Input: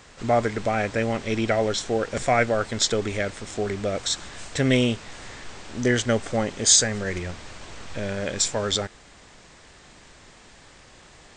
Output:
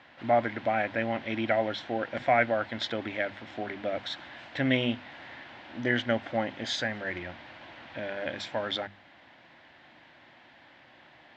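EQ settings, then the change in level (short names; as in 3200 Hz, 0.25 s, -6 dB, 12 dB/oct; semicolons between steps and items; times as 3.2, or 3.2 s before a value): speaker cabinet 190–3100 Hz, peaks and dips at 190 Hz -9 dB, 420 Hz -10 dB, 1200 Hz -9 dB, 2500 Hz -4 dB; bell 450 Hz -6.5 dB 0.44 oct; notches 50/100/150/200/250 Hz; 0.0 dB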